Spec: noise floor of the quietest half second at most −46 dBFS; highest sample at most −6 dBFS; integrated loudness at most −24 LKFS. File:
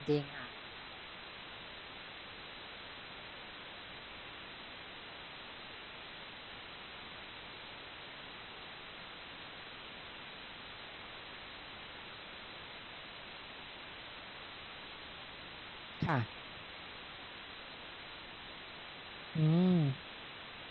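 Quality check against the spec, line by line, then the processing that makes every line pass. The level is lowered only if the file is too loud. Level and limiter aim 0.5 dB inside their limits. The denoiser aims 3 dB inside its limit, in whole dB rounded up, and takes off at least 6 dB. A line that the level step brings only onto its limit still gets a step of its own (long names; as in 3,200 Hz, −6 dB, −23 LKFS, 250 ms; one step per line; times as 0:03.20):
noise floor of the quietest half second −50 dBFS: in spec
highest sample −19.5 dBFS: in spec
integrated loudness −42.5 LKFS: in spec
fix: no processing needed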